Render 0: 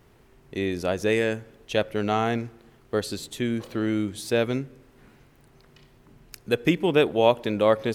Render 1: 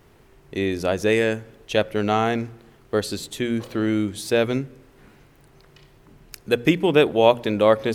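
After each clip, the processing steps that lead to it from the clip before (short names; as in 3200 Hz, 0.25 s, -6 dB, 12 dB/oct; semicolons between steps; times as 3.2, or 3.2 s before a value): notches 60/120/180/240 Hz; gain +3.5 dB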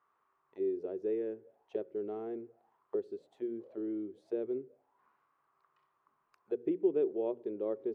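auto-wah 380–1200 Hz, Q 7.4, down, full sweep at -21.5 dBFS; gain -5.5 dB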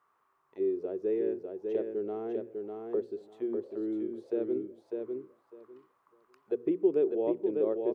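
feedback echo 0.6 s, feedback 17%, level -4.5 dB; gain +3.5 dB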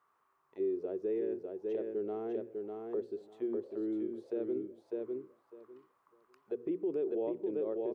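limiter -25 dBFS, peak gain reduction 9.5 dB; gain -2 dB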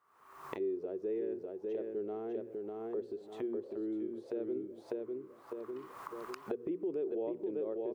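recorder AGC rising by 65 dB/s; gain -2 dB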